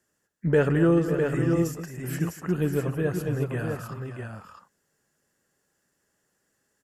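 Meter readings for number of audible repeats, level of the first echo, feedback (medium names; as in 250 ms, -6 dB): 4, -19.5 dB, no regular repeats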